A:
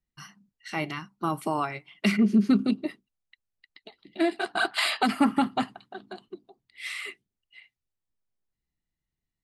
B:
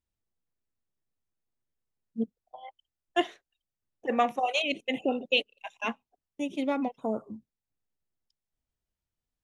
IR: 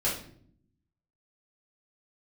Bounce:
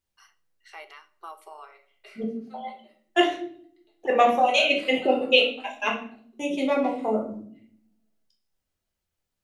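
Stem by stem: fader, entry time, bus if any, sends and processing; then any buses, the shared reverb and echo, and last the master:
-11.0 dB, 0.00 s, send -18 dB, elliptic high-pass 400 Hz, stop band 40 dB; auto duck -20 dB, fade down 0.85 s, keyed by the second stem
+0.5 dB, 0.00 s, send -3 dB, none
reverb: on, RT60 0.60 s, pre-delay 5 ms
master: bass shelf 270 Hz -8 dB

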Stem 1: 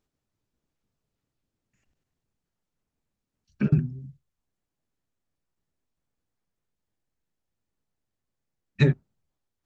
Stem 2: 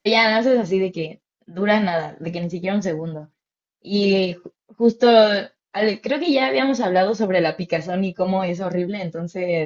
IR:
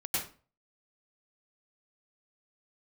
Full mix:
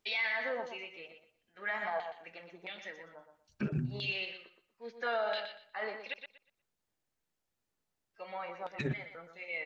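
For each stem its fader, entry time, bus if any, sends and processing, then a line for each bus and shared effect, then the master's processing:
-1.0 dB, 0.00 s, no send, echo send -24 dB, compressor with a negative ratio -21 dBFS, ratio -0.5
-5.0 dB, 0.00 s, muted 6.14–8.14 s, no send, echo send -8.5 dB, treble shelf 4.8 kHz -5 dB; hum notches 50/100/150 Hz; LFO band-pass saw down 1.5 Hz 900–3400 Hz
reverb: none
echo: feedback delay 120 ms, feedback 23%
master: bass shelf 260 Hz -8.5 dB; peak limiter -25 dBFS, peak gain reduction 9 dB

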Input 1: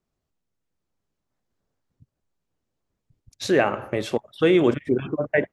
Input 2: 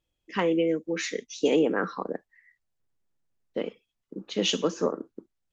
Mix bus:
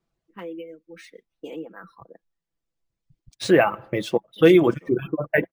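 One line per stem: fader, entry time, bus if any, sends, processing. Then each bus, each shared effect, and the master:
+2.0 dB, 0.00 s, no send, none
-13.0 dB, 0.00 s, no send, level-controlled noise filter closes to 310 Hz, open at -24.5 dBFS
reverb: none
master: reverb removal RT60 1.9 s; comb 6 ms, depth 47%; decimation joined by straight lines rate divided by 3×

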